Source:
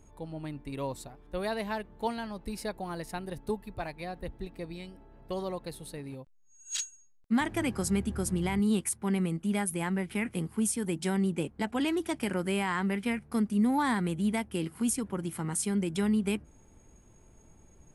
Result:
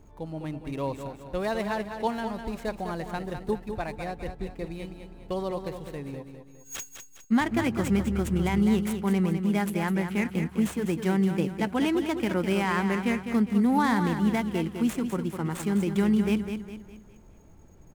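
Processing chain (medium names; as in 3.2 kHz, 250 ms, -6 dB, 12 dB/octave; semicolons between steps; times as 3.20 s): median filter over 9 samples; feedback delay 204 ms, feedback 42%, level -8 dB; trim +4 dB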